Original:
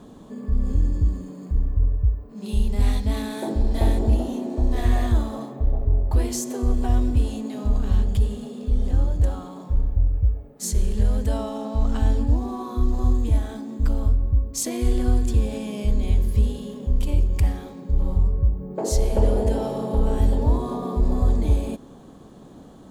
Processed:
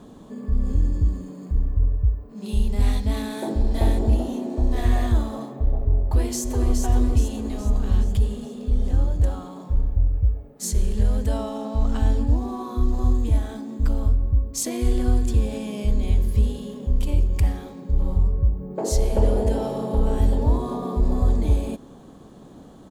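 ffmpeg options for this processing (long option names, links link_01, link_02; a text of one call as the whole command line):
ffmpeg -i in.wav -filter_complex "[0:a]asplit=2[link_01][link_02];[link_02]afade=type=in:start_time=6.02:duration=0.01,afade=type=out:start_time=6.77:duration=0.01,aecho=0:1:420|840|1260|1680|2100|2520:0.562341|0.281171|0.140585|0.0702927|0.0351463|0.0175732[link_03];[link_01][link_03]amix=inputs=2:normalize=0" out.wav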